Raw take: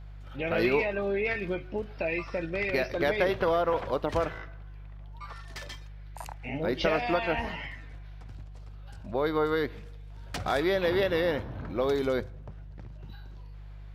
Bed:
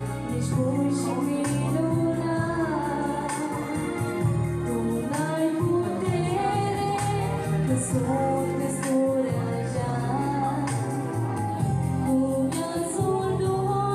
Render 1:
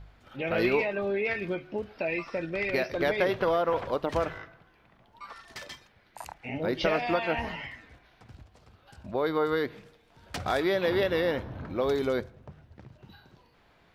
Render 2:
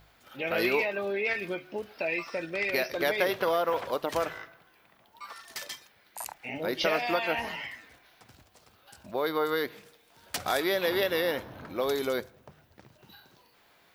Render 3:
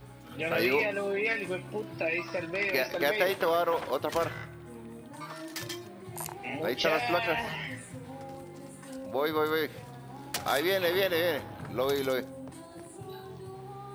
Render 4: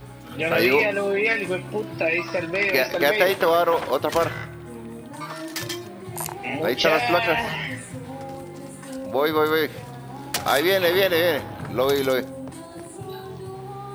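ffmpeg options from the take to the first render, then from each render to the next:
-af "bandreject=f=50:t=h:w=4,bandreject=f=100:t=h:w=4,bandreject=f=150:t=h:w=4"
-af "aemphasis=mode=production:type=bsi"
-filter_complex "[1:a]volume=-19dB[a];[0:a][a]amix=inputs=2:normalize=0"
-af "volume=8dB"

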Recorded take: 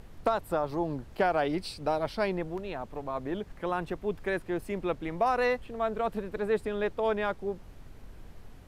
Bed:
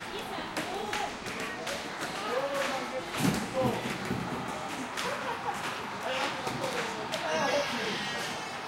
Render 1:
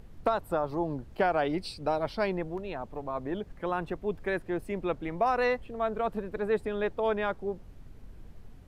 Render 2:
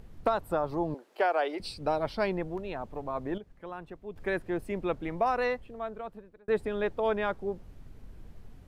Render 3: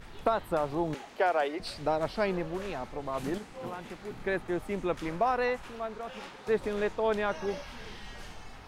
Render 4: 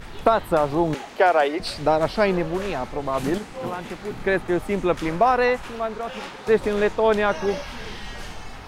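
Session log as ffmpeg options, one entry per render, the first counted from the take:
-af "afftdn=nr=6:nf=-50"
-filter_complex "[0:a]asettb=1/sr,asplit=3[a][b][c];[a]atrim=end=0.944[d];[b]atrim=start=0.94:end=1.6,asetpts=PTS-STARTPTS,afade=t=in:d=0.004:c=qsin,afade=t=out:st=0.656:d=0.004:c=qsin,highpass=f=370:w=0.5412,highpass=f=370:w=1.3066[e];[c]atrim=start=1.596[f];[d][e]acrossfade=d=0.004:c1=hsin:c2=qsin[g];[g][f]acrossfade=d=0.004:c1=qsin:c2=hsin,asplit=4[h][i][j][k];[h]atrim=end=3.382[l];[i]atrim=start=3.378:end=4.162,asetpts=PTS-STARTPTS,volume=-10dB[m];[j]atrim=start=4.158:end=6.48,asetpts=PTS-STARTPTS,afade=t=out:st=0.982:d=1.34[n];[k]atrim=start=6.48,asetpts=PTS-STARTPTS,afade=t=in:d=0.004:c=hsin[o];[l][m]acrossfade=d=0.004:c1=hsin:c2=hsin[p];[n][o]concat=n=2:v=0:a=1[q];[p][q]acrossfade=d=0.004:c1=hsin:c2=hsin"
-filter_complex "[1:a]volume=-13.5dB[a];[0:a][a]amix=inputs=2:normalize=0"
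-af "volume=9.5dB"

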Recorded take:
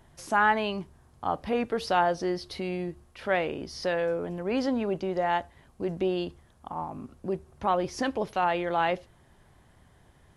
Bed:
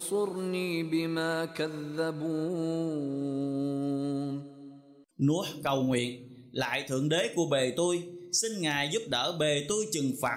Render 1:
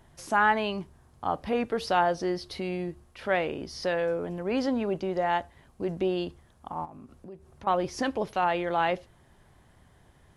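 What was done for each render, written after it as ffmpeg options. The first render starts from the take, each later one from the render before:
-filter_complex "[0:a]asettb=1/sr,asplit=3[a][b][c];[a]atrim=end=6.854[d];[b]atrim=start=6.85:end=7.67,asetpts=PTS-STARTPTS,afade=t=in:d=0.004:c=qsin,afade=t=out:st=0.816:d=0.004:c=qsin,acompressor=threshold=-45dB:ratio=3:attack=3.2:release=140:knee=1:detection=peak[e];[c]atrim=start=7.666[f];[d][e]acrossfade=d=0.004:c1=hsin:c2=qsin[g];[g][f]acrossfade=d=0.004:c1=qsin:c2=hsin"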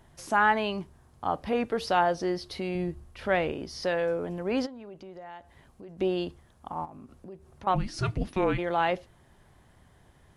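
-filter_complex "[0:a]asettb=1/sr,asplit=3[a][b][c];[a]atrim=end=2.754[d];[b]atrim=start=2.75:end=3.52,asetpts=PTS-STARTPTS,afade=t=in:d=0.004:c=qsin,afade=t=out:st=0.766:d=0.004:c=qsin,lowshelf=f=130:g=10.5[e];[c]atrim=start=3.516[f];[d][e]acrossfade=d=0.004:c1=hsin:c2=qsin[g];[g][f]acrossfade=d=0.004:c1=qsin:c2=hsin,asplit=3[h][i][j];[h]afade=t=out:st=4.65:d=0.02[k];[i]acompressor=threshold=-47dB:ratio=3:attack=3.2:release=140:knee=1:detection=peak,afade=t=in:st=4.65:d=0.02,afade=t=out:st=5.98:d=0.02[l];[j]afade=t=in:st=5.98:d=0.02[m];[k][l][m]amix=inputs=3:normalize=0,asplit=3[n][o][p];[n]afade=t=out:st=7.74:d=0.02[q];[o]afreqshift=-380,afade=t=in:st=7.74:d=0.02,afade=t=out:st=8.57:d=0.02[r];[p]afade=t=in:st=8.57:d=0.02[s];[q][r][s]amix=inputs=3:normalize=0"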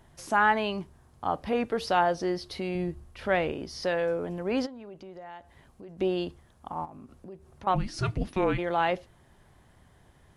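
-af anull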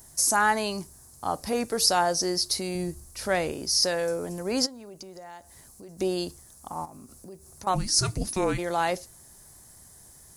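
-af "aexciter=amount=11.7:drive=5.8:freq=4.7k"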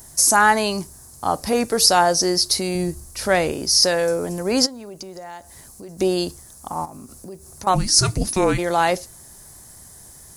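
-af "volume=7.5dB,alimiter=limit=-2dB:level=0:latency=1"

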